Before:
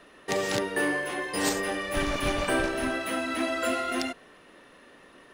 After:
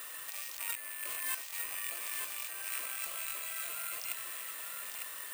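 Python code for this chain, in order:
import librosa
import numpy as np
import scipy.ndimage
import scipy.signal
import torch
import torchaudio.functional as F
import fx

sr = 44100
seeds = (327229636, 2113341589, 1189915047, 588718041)

p1 = fx.rattle_buzz(x, sr, strikes_db=-43.0, level_db=-22.0)
p2 = scipy.signal.sosfilt(scipy.signal.bessel(8, 1400.0, 'highpass', norm='mag', fs=sr, output='sos'), p1)
p3 = fx.high_shelf(p2, sr, hz=5100.0, db=7.0)
p4 = fx.over_compress(p3, sr, threshold_db=-43.0, ratio=-1.0)
p5 = p4 + fx.echo_single(p4, sr, ms=903, db=-5.0, dry=0)
p6 = (np.kron(p5[::4], np.eye(4)[0]) * 4)[:len(p5)]
p7 = fx.buffer_crackle(p6, sr, first_s=0.76, period_s=0.18, block=1024, kind='repeat')
y = F.gain(torch.from_numpy(p7), -4.0).numpy()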